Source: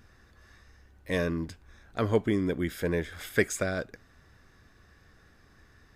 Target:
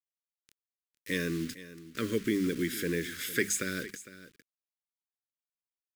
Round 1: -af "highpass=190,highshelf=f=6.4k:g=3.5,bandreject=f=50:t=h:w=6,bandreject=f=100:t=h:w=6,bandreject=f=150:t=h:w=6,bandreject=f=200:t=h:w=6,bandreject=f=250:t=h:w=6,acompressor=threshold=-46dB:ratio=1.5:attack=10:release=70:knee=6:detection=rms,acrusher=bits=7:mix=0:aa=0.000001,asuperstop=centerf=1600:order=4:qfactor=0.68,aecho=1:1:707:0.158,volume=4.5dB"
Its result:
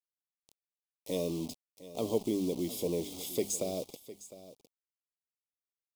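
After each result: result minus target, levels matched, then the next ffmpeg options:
2000 Hz band -19.0 dB; echo 0.251 s late; compressor: peak gain reduction +3.5 dB
-af "highpass=190,highshelf=f=6.4k:g=3.5,bandreject=f=50:t=h:w=6,bandreject=f=100:t=h:w=6,bandreject=f=150:t=h:w=6,bandreject=f=200:t=h:w=6,bandreject=f=250:t=h:w=6,acompressor=threshold=-46dB:ratio=1.5:attack=10:release=70:knee=6:detection=rms,acrusher=bits=7:mix=0:aa=0.000001,asuperstop=centerf=780:order=4:qfactor=0.68,aecho=1:1:707:0.158,volume=4.5dB"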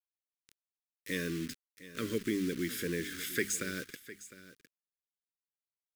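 echo 0.251 s late; compressor: peak gain reduction +3.5 dB
-af "highpass=190,highshelf=f=6.4k:g=3.5,bandreject=f=50:t=h:w=6,bandreject=f=100:t=h:w=6,bandreject=f=150:t=h:w=6,bandreject=f=200:t=h:w=6,bandreject=f=250:t=h:w=6,acompressor=threshold=-46dB:ratio=1.5:attack=10:release=70:knee=6:detection=rms,acrusher=bits=7:mix=0:aa=0.000001,asuperstop=centerf=780:order=4:qfactor=0.68,aecho=1:1:456:0.158,volume=4.5dB"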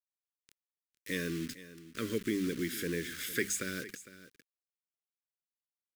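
compressor: peak gain reduction +3.5 dB
-af "highpass=190,highshelf=f=6.4k:g=3.5,bandreject=f=50:t=h:w=6,bandreject=f=100:t=h:w=6,bandreject=f=150:t=h:w=6,bandreject=f=200:t=h:w=6,bandreject=f=250:t=h:w=6,acompressor=threshold=-35dB:ratio=1.5:attack=10:release=70:knee=6:detection=rms,acrusher=bits=7:mix=0:aa=0.000001,asuperstop=centerf=780:order=4:qfactor=0.68,aecho=1:1:456:0.158,volume=4.5dB"

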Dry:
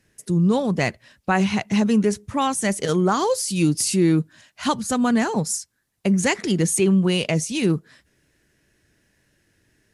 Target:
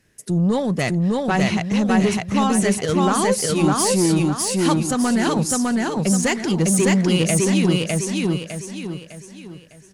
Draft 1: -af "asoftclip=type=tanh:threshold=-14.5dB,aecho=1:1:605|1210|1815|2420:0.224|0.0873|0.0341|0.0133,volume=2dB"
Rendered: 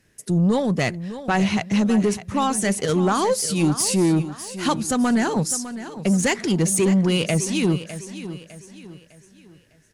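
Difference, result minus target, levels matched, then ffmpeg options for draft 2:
echo-to-direct -11.5 dB
-af "asoftclip=type=tanh:threshold=-14.5dB,aecho=1:1:605|1210|1815|2420|3025:0.841|0.328|0.128|0.0499|0.0195,volume=2dB"

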